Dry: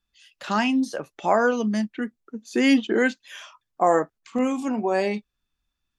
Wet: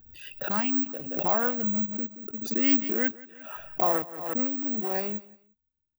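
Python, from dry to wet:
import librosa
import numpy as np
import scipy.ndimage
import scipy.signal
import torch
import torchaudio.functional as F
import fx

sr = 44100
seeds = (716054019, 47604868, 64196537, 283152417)

p1 = fx.wiener(x, sr, points=41)
p2 = fx.dynamic_eq(p1, sr, hz=460.0, q=1.3, threshold_db=-32.0, ratio=4.0, max_db=-5)
p3 = fx.quant_dither(p2, sr, seeds[0], bits=6, dither='none')
p4 = p2 + (p3 * 10.0 ** (-9.5 / 20.0))
p5 = fx.echo_feedback(p4, sr, ms=175, feedback_pct=24, wet_db=-20.5)
p6 = (np.kron(p5[::2], np.eye(2)[0]) * 2)[:len(p5)]
p7 = fx.pre_swell(p6, sr, db_per_s=55.0)
y = p7 * 10.0 ** (-8.0 / 20.0)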